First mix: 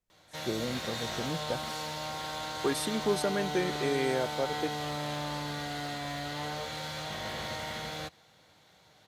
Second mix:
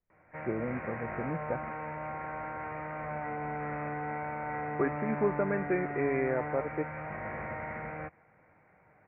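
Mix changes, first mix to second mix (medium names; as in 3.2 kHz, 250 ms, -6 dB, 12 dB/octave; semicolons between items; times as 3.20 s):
second voice: entry +2.15 s; master: add steep low-pass 2.4 kHz 96 dB/octave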